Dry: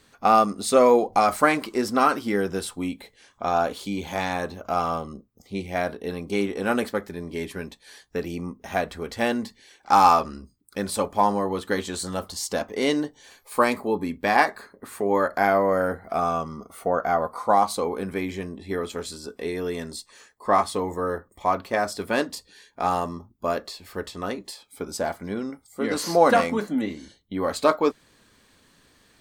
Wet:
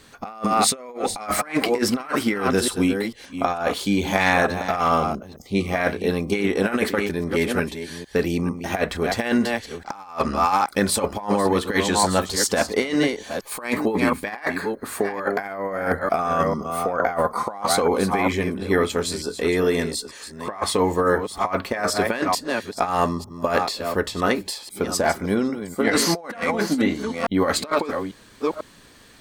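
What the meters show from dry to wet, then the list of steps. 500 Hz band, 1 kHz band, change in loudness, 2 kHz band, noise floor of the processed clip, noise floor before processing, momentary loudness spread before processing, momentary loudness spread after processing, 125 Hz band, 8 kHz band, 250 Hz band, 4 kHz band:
+1.5 dB, -1.0 dB, +2.0 dB, +4.5 dB, -47 dBFS, -61 dBFS, 15 LU, 8 LU, +6.5 dB, +8.5 dB, +5.0 dB, +7.0 dB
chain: reverse delay 0.447 s, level -10.5 dB; dynamic EQ 2000 Hz, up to +7 dB, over -39 dBFS, Q 1.4; negative-ratio compressor -25 dBFS, ratio -0.5; gain +4.5 dB

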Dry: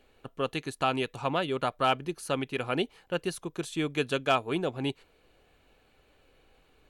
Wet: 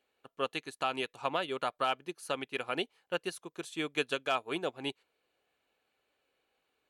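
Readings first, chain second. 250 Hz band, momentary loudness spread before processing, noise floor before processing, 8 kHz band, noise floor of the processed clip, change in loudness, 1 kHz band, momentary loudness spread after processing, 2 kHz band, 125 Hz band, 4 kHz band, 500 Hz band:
-8.0 dB, 8 LU, -65 dBFS, -4.5 dB, -80 dBFS, -4.5 dB, -4.5 dB, 8 LU, -2.5 dB, -13.5 dB, -2.5 dB, -5.0 dB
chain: HPF 530 Hz 6 dB/oct; limiter -18.5 dBFS, peak gain reduction 6 dB; upward expander 1.5:1, over -54 dBFS; gain +1.5 dB

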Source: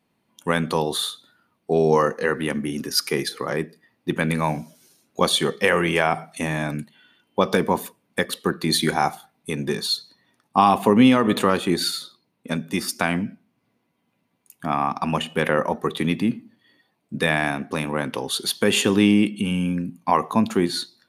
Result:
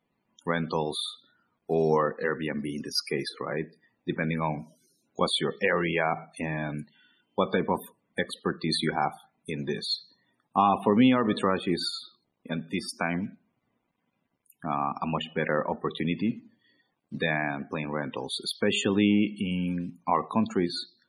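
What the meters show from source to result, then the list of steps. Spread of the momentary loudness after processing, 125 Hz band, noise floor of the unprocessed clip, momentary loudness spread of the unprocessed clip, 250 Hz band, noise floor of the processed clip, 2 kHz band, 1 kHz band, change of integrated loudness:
12 LU, -6.0 dB, -72 dBFS, 12 LU, -6.0 dB, -78 dBFS, -6.5 dB, -6.0 dB, -6.5 dB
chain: companded quantiser 6-bit; loudest bins only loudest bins 64; gain -6 dB

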